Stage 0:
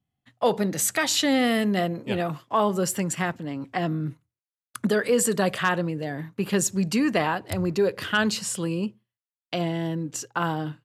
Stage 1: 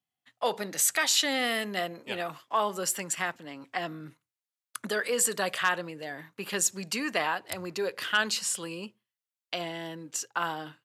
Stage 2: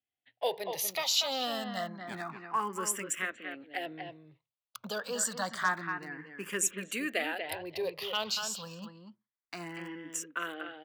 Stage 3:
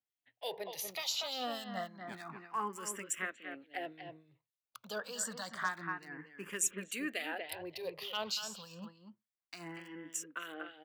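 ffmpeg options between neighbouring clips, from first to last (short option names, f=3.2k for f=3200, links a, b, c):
-af "highpass=f=1.1k:p=1"
-filter_complex "[0:a]acrossover=split=4200[a][b];[a]aecho=1:1:239:0.447[c];[b]acrusher=bits=7:mix=0:aa=0.000001[d];[c][d]amix=inputs=2:normalize=0,asplit=2[e][f];[f]afreqshift=0.28[g];[e][g]amix=inputs=2:normalize=1,volume=-1.5dB"
-filter_complex "[0:a]acrossover=split=2300[a][b];[a]aeval=exprs='val(0)*(1-0.7/2+0.7/2*cos(2*PI*3.4*n/s))':c=same[c];[b]aeval=exprs='val(0)*(1-0.7/2-0.7/2*cos(2*PI*3.4*n/s))':c=same[d];[c][d]amix=inputs=2:normalize=0,volume=-2dB"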